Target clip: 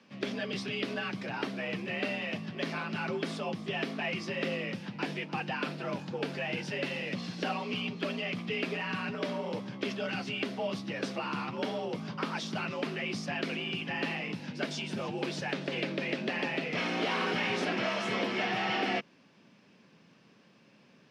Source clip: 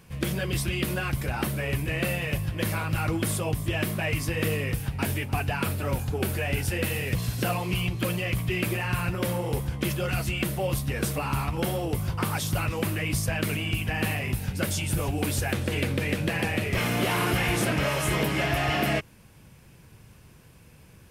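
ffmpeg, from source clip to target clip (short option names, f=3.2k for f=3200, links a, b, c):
-filter_complex "[0:a]lowpass=f=5.3k:t=q:w=2.3,afreqshift=59,acrossover=split=180 4200:gain=0.0794 1 0.224[a][b][c];[a][b][c]amix=inputs=3:normalize=0,volume=-5dB"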